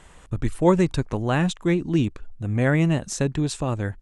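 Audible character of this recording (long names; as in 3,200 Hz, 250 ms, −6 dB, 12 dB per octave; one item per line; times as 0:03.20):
background noise floor −49 dBFS
spectral slope −6.0 dB per octave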